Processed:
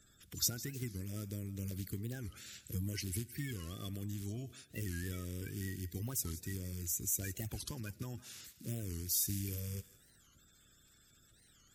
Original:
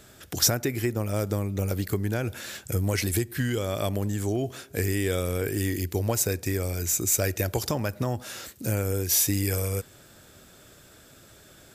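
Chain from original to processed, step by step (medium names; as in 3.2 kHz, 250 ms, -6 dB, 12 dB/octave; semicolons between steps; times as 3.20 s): coarse spectral quantiser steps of 30 dB; amplifier tone stack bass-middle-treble 6-0-2; thinning echo 159 ms, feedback 43%, high-pass 700 Hz, level -16 dB; warped record 45 rpm, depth 250 cents; trim +4 dB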